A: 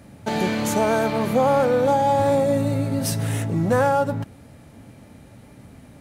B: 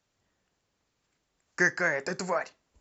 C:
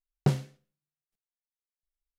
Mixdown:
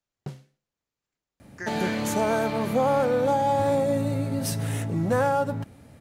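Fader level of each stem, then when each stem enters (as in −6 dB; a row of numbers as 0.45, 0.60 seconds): −4.0, −12.5, −12.5 decibels; 1.40, 0.00, 0.00 seconds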